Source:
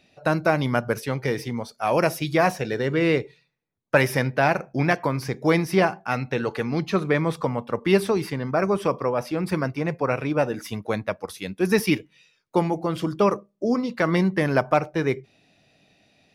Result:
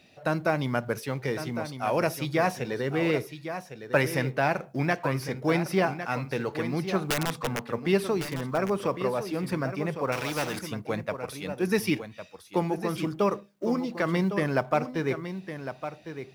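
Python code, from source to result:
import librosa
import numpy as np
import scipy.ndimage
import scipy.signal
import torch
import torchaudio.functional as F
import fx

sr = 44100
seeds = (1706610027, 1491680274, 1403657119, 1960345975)

p1 = fx.law_mismatch(x, sr, coded='mu')
p2 = scipy.signal.sosfilt(scipy.signal.butter(2, 41.0, 'highpass', fs=sr, output='sos'), p1)
p3 = fx.overflow_wrap(p2, sr, gain_db=14.5, at=(7.08, 7.63))
p4 = p3 + fx.echo_single(p3, sr, ms=1106, db=-10.0, dry=0)
p5 = fx.spectral_comp(p4, sr, ratio=2.0, at=(10.12, 10.59))
y = F.gain(torch.from_numpy(p5), -5.5).numpy()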